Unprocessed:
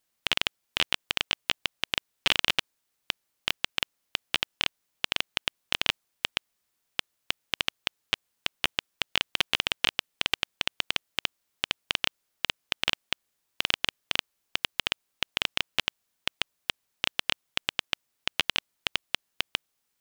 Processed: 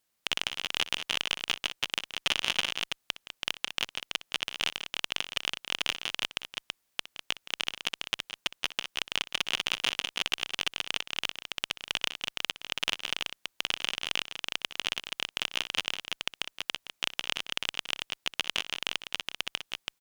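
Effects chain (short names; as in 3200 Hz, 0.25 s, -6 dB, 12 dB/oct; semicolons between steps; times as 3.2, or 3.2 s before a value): one-sided clip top -18 dBFS; tapped delay 62/169/200/330 ms -16/-15/-10/-4 dB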